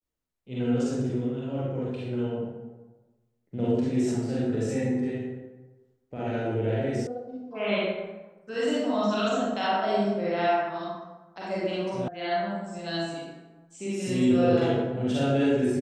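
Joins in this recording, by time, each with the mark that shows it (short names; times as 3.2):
7.07 sound cut off
12.08 sound cut off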